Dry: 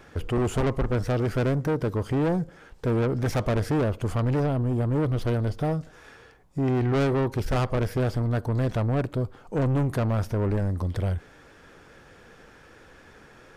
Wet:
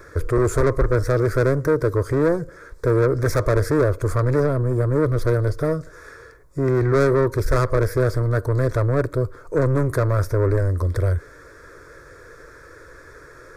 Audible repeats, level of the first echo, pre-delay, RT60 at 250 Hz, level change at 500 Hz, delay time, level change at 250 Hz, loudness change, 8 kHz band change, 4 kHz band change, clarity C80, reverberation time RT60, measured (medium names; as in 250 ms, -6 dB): no echo, no echo, no reverb, no reverb, +8.0 dB, no echo, +2.0 dB, +5.5 dB, no reading, 0.0 dB, no reverb, no reverb